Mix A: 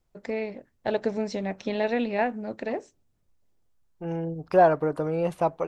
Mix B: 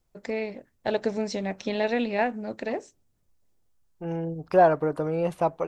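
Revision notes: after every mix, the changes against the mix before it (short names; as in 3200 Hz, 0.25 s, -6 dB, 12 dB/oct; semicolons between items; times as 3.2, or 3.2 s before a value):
first voice: add high shelf 4000 Hz +7 dB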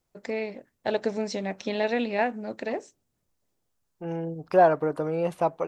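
master: add low shelf 78 Hz -12 dB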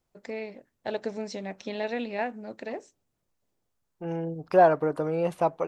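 first voice -5.0 dB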